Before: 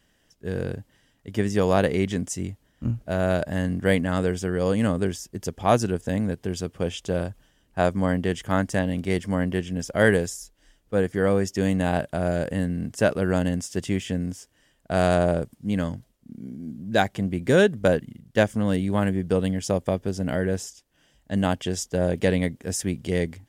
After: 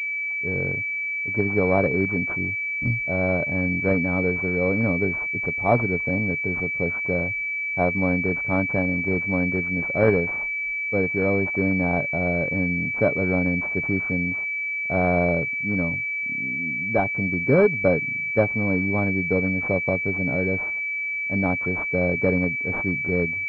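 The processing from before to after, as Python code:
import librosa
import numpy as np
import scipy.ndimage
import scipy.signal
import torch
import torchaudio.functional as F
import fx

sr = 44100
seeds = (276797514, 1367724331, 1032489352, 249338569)

y = x + 0.32 * np.pad(x, (int(7.1 * sr / 1000.0), 0))[:len(x)]
y = fx.pwm(y, sr, carrier_hz=2300.0)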